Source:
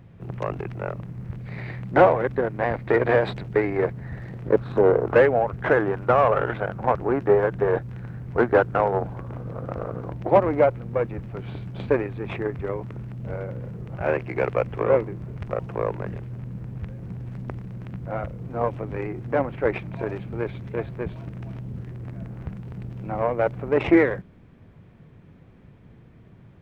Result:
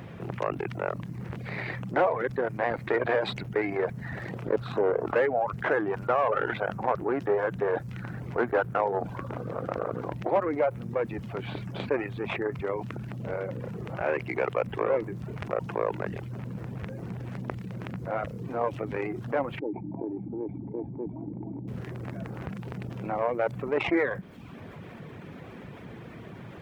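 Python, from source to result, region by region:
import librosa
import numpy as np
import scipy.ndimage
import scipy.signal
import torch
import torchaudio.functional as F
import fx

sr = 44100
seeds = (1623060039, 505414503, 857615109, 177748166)

y = fx.chain(x, sr, fx.formant_cascade(vowel='u'),
    fx.env_flatten(amount_pct=50), at=(19.59, 21.68))
y = fx.highpass(y, sr, hz=340.0, slope=6)
y = fx.dereverb_blind(y, sr, rt60_s=0.55)
y = fx.env_flatten(y, sr, amount_pct=50)
y = y * 10.0 ** (-8.0 / 20.0)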